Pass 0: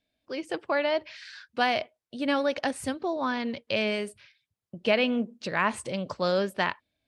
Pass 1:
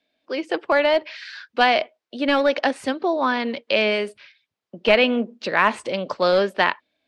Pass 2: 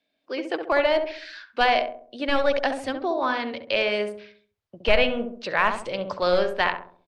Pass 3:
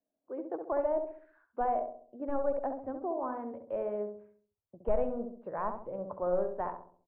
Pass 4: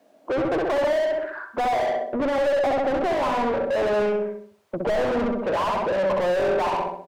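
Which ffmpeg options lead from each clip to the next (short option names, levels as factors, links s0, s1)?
-filter_complex "[0:a]acrossover=split=220 5500:gain=0.1 1 0.158[s0][s1][s2];[s0][s1][s2]amix=inputs=3:normalize=0,acrossover=split=1200[s3][s4];[s3]aeval=exprs='clip(val(0),-1,0.0708)':c=same[s5];[s5][s4]amix=inputs=2:normalize=0,volume=2.66"
-filter_complex "[0:a]asubboost=boost=11.5:cutoff=65,asplit=2[s0][s1];[s1]adelay=67,lowpass=f=860:p=1,volume=0.631,asplit=2[s2][s3];[s3]adelay=67,lowpass=f=860:p=1,volume=0.51,asplit=2[s4][s5];[s5]adelay=67,lowpass=f=860:p=1,volume=0.51,asplit=2[s6][s7];[s7]adelay=67,lowpass=f=860:p=1,volume=0.51,asplit=2[s8][s9];[s9]adelay=67,lowpass=f=860:p=1,volume=0.51,asplit=2[s10][s11];[s11]adelay=67,lowpass=f=860:p=1,volume=0.51,asplit=2[s12][s13];[s13]adelay=67,lowpass=f=860:p=1,volume=0.51[s14];[s2][s4][s6][s8][s10][s12][s14]amix=inputs=7:normalize=0[s15];[s0][s15]amix=inputs=2:normalize=0,volume=0.668"
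-af "lowpass=f=1000:w=0.5412,lowpass=f=1000:w=1.3066,volume=0.376"
-filter_complex "[0:a]asplit=2[s0][s1];[s1]highpass=f=720:p=1,volume=141,asoftclip=type=tanh:threshold=0.168[s2];[s0][s2]amix=inputs=2:normalize=0,lowpass=f=1300:p=1,volume=0.501,aecho=1:1:62|124|186|248:0.282|0.11|0.0429|0.0167"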